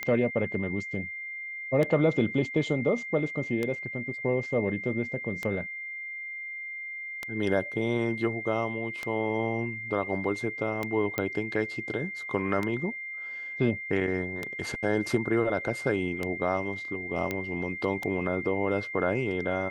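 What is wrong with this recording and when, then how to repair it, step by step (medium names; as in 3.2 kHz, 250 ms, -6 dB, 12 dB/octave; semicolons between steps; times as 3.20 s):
tick 33 1/3 rpm -16 dBFS
whine 2.1 kHz -35 dBFS
11.18 s: pop -14 dBFS
17.31 s: pop -16 dBFS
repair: de-click; band-stop 2.1 kHz, Q 30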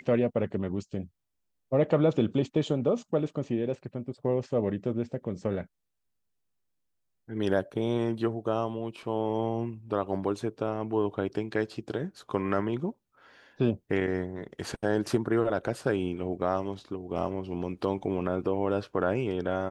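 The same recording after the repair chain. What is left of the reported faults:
nothing left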